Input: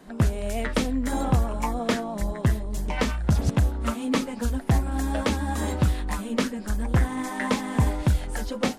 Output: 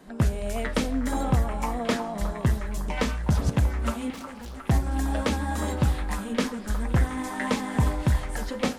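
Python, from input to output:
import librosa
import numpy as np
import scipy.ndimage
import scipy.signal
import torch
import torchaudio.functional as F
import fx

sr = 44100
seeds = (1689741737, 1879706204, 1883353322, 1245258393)

y = fx.tube_stage(x, sr, drive_db=37.0, bias=0.6, at=(4.1, 4.68))
y = fx.echo_stepped(y, sr, ms=362, hz=990.0, octaves=0.7, feedback_pct=70, wet_db=-6.5)
y = fx.rev_double_slope(y, sr, seeds[0], early_s=0.6, late_s=4.8, knee_db=-21, drr_db=13.0)
y = F.gain(torch.from_numpy(y), -1.5).numpy()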